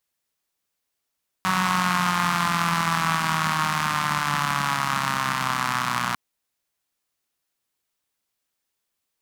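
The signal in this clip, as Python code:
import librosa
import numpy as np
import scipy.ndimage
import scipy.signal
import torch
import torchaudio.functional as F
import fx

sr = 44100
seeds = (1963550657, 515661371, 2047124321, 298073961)

y = fx.engine_four_rev(sr, seeds[0], length_s=4.7, rpm=5600, resonances_hz=(180.0, 1100.0), end_rpm=3600)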